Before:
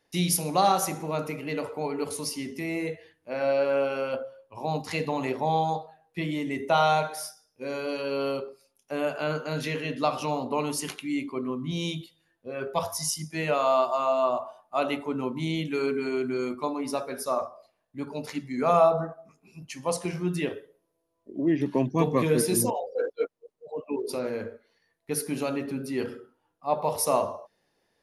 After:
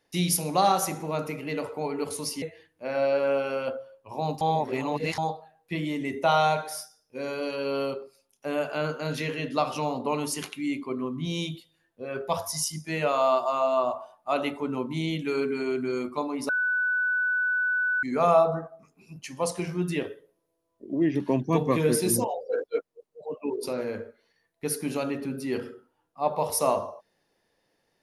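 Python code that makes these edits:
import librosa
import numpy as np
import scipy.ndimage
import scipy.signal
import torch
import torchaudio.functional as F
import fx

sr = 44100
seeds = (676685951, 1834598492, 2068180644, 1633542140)

y = fx.edit(x, sr, fx.cut(start_s=2.42, length_s=0.46),
    fx.reverse_span(start_s=4.87, length_s=0.77),
    fx.bleep(start_s=16.95, length_s=1.54, hz=1490.0, db=-22.5), tone=tone)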